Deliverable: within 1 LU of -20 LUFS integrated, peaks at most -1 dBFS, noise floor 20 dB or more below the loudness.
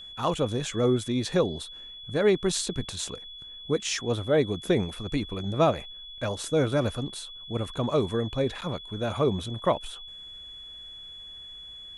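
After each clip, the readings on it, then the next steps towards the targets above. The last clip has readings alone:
dropouts 1; longest dropout 8.0 ms; steady tone 3400 Hz; tone level -41 dBFS; loudness -28.0 LUFS; peak -10.5 dBFS; loudness target -20.0 LUFS
-> interpolate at 8.61, 8 ms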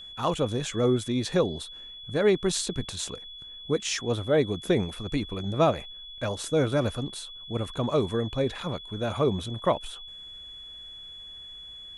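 dropouts 0; steady tone 3400 Hz; tone level -41 dBFS
-> notch 3400 Hz, Q 30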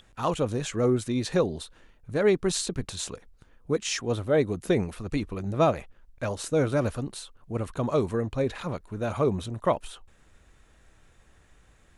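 steady tone none; loudness -28.0 LUFS; peak -10.5 dBFS; loudness target -20.0 LUFS
-> gain +8 dB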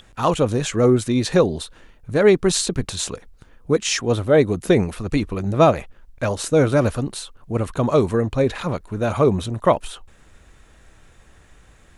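loudness -20.0 LUFS; peak -2.5 dBFS; noise floor -51 dBFS

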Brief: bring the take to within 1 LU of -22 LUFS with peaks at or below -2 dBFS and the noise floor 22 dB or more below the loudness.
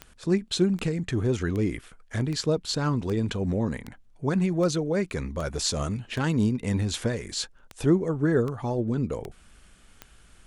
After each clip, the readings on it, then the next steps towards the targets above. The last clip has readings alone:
clicks 14; loudness -27.0 LUFS; peak -10.5 dBFS; loudness target -22.0 LUFS
-> de-click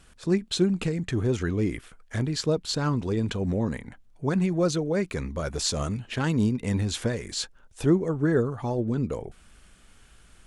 clicks 0; loudness -27.0 LUFS; peak -10.5 dBFS; loudness target -22.0 LUFS
-> gain +5 dB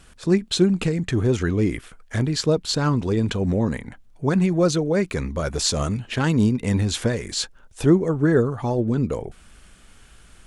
loudness -22.0 LUFS; peak -5.5 dBFS; noise floor -51 dBFS

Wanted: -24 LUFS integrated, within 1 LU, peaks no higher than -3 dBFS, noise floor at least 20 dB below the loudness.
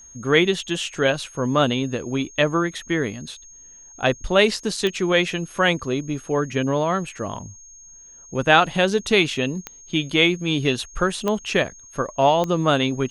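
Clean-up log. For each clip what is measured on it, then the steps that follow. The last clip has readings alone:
clicks 4; steady tone 6500 Hz; tone level -43 dBFS; loudness -21.5 LUFS; peak -1.5 dBFS; loudness target -24.0 LUFS
-> de-click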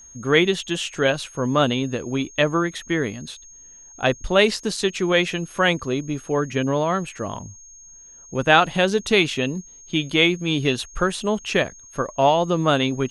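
clicks 0; steady tone 6500 Hz; tone level -43 dBFS
-> notch 6500 Hz, Q 30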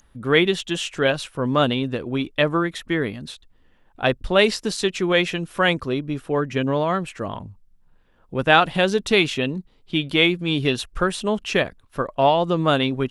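steady tone none; loudness -21.5 LUFS; peak -1.5 dBFS; loudness target -24.0 LUFS
-> gain -2.5 dB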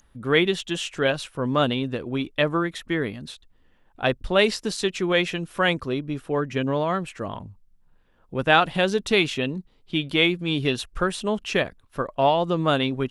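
loudness -24.0 LUFS; peak -4.0 dBFS; noise floor -60 dBFS

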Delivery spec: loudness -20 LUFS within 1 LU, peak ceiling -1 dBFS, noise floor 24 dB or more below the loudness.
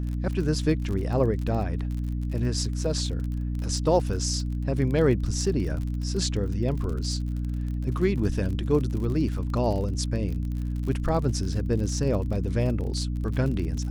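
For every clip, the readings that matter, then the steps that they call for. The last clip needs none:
ticks 43/s; hum 60 Hz; harmonics up to 300 Hz; hum level -26 dBFS; loudness -27.0 LUFS; peak -9.5 dBFS; loudness target -20.0 LUFS
-> de-click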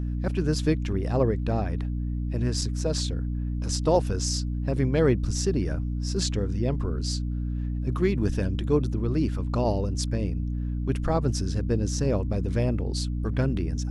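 ticks 0/s; hum 60 Hz; harmonics up to 300 Hz; hum level -26 dBFS
-> notches 60/120/180/240/300 Hz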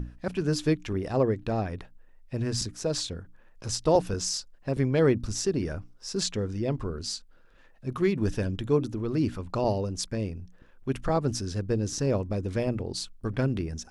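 hum none; loudness -29.0 LUFS; peak -10.5 dBFS; loudness target -20.0 LUFS
-> gain +9 dB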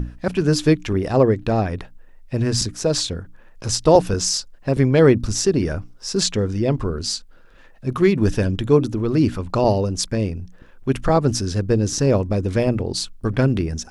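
loudness -20.0 LUFS; peak -1.5 dBFS; noise floor -46 dBFS

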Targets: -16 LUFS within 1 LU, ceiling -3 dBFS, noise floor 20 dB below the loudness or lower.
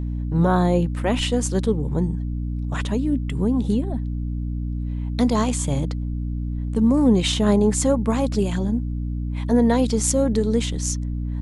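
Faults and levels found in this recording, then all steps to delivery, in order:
hum 60 Hz; harmonics up to 300 Hz; hum level -23 dBFS; loudness -22.0 LUFS; peak -4.0 dBFS; loudness target -16.0 LUFS
-> de-hum 60 Hz, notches 5; gain +6 dB; limiter -3 dBFS

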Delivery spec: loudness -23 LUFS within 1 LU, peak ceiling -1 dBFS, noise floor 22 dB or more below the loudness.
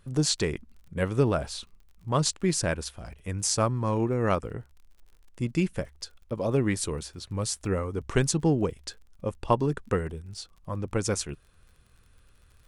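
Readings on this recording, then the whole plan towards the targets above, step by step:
ticks 36/s; loudness -28.5 LUFS; peak -8.5 dBFS; loudness target -23.0 LUFS
-> de-click; gain +5.5 dB

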